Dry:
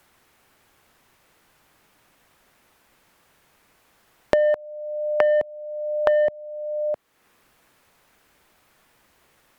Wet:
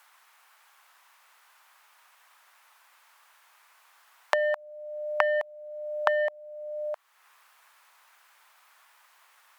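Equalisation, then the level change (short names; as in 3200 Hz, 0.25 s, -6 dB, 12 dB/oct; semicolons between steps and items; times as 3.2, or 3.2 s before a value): ladder high-pass 790 Hz, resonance 35%; +8.0 dB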